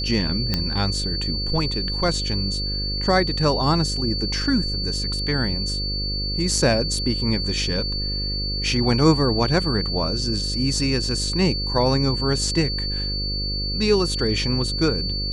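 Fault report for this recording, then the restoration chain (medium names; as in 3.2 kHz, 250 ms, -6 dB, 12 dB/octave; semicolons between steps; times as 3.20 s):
buzz 50 Hz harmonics 11 -28 dBFS
whine 4.5 kHz -26 dBFS
0.54 s: pop -7 dBFS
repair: de-click; de-hum 50 Hz, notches 11; band-stop 4.5 kHz, Q 30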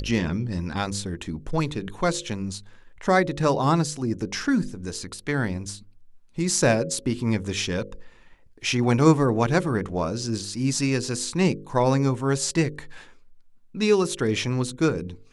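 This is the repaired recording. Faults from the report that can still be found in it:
nothing left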